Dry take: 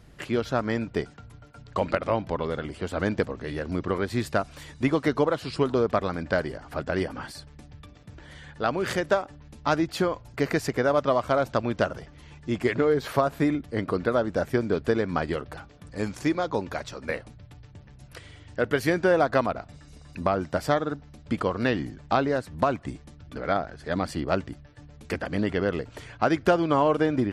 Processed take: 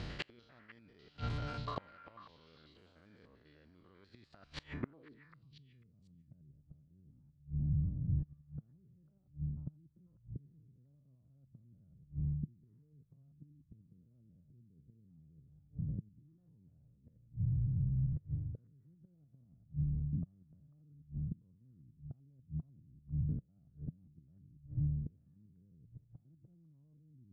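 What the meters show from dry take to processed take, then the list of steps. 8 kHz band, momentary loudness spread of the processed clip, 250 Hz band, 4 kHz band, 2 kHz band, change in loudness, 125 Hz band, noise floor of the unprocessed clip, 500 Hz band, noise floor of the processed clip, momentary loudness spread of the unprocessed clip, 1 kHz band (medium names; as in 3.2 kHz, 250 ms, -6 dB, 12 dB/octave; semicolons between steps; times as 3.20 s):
under -25 dB, 23 LU, -19.0 dB, under -15 dB, under -25 dB, -13.5 dB, -5.5 dB, -50 dBFS, under -30 dB, -69 dBFS, 15 LU, under -25 dB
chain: spectrogram pixelated in time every 100 ms; band-stop 3.6 kHz, Q 20; dynamic bell 560 Hz, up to -5 dB, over -36 dBFS, Q 0.87; reverse; compression 12:1, threshold -39 dBFS, peak gain reduction 19 dB; reverse; inverted gate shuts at -37 dBFS, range -31 dB; low-pass sweep 4.1 kHz -> 150 Hz, 4.61–5.27 s; repeats whose band climbs or falls 495 ms, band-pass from 1.5 kHz, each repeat 1.4 oct, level -10.5 dB; trim +11 dB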